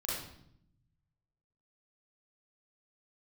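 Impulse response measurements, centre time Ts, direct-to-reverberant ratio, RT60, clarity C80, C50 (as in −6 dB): 63 ms, −7.0 dB, 0.70 s, 4.5 dB, −0.5 dB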